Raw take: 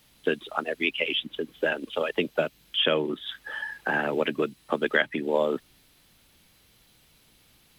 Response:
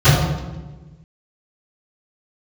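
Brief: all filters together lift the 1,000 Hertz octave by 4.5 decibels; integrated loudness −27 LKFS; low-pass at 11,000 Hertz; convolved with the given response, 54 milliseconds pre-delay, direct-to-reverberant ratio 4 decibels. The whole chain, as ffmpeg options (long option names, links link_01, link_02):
-filter_complex "[0:a]lowpass=11000,equalizer=frequency=1000:width_type=o:gain=6,asplit=2[link_01][link_02];[1:a]atrim=start_sample=2205,adelay=54[link_03];[link_02][link_03]afir=irnorm=-1:irlink=0,volume=-30.5dB[link_04];[link_01][link_04]amix=inputs=2:normalize=0,volume=-3dB"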